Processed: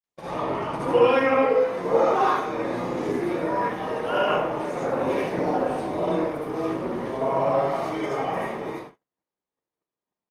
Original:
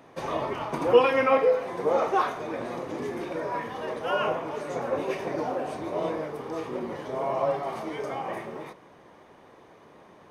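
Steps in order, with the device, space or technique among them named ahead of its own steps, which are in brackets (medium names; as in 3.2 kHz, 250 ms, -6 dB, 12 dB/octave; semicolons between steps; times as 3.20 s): speakerphone in a meeting room (reverberation RT60 0.65 s, pre-delay 59 ms, DRR -6 dB; speakerphone echo 260 ms, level -28 dB; level rider gain up to 4.5 dB; gate -34 dBFS, range -47 dB; trim -5.5 dB; Opus 32 kbps 48 kHz)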